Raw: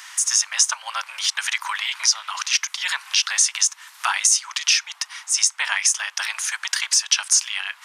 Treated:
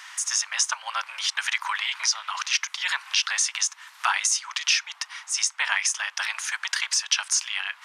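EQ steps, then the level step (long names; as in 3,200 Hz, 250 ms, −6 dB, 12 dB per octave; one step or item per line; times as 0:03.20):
low-shelf EQ 370 Hz −5 dB
high-shelf EQ 5,600 Hz −11 dB
0.0 dB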